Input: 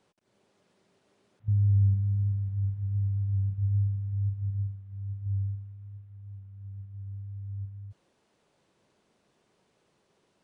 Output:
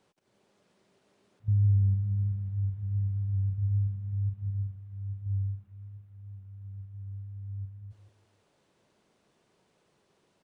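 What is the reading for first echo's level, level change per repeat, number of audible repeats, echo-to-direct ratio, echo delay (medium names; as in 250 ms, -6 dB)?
-11.5 dB, -9.5 dB, 3, -11.0 dB, 165 ms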